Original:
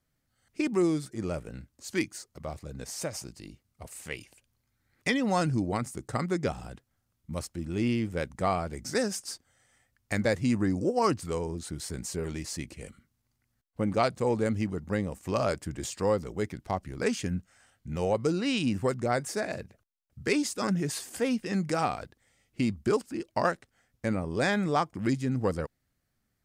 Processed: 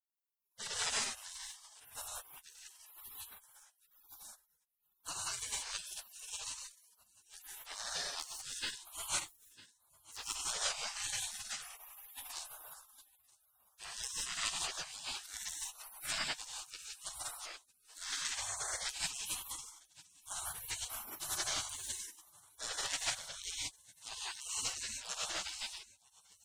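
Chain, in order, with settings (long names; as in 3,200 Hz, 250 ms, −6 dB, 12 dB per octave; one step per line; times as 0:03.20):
0:09.10–0:10.19: running median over 25 samples
meter weighting curve D
transient designer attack −6 dB, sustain −10 dB
high-shelf EQ 5,200 Hz −2 dB
mains-hum notches 50/100/150 Hz
feedback echo with a high-pass in the loop 952 ms, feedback 45%, high-pass 490 Hz, level −18.5 dB
reverb whose tail is shaped and stops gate 200 ms rising, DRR −4.5 dB
gate on every frequency bin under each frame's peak −30 dB weak
level +4.5 dB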